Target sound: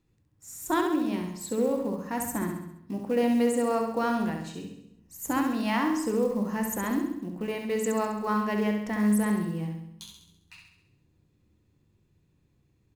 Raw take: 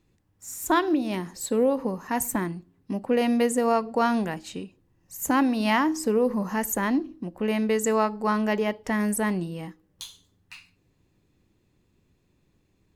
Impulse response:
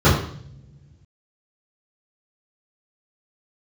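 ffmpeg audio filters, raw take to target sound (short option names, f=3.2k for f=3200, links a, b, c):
-filter_complex "[0:a]aecho=1:1:67|134|201|268|335|402|469:0.531|0.287|0.155|0.0836|0.0451|0.0244|0.0132,acrusher=bits=7:mode=log:mix=0:aa=0.000001,asplit=2[a][b];[1:a]atrim=start_sample=2205[c];[b][c]afir=irnorm=-1:irlink=0,volume=-34dB[d];[a][d]amix=inputs=2:normalize=0,volume=-6.5dB"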